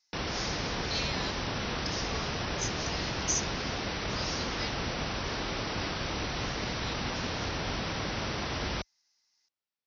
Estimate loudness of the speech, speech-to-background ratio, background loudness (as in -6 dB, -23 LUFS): -38.0 LUFS, -4.5 dB, -33.5 LUFS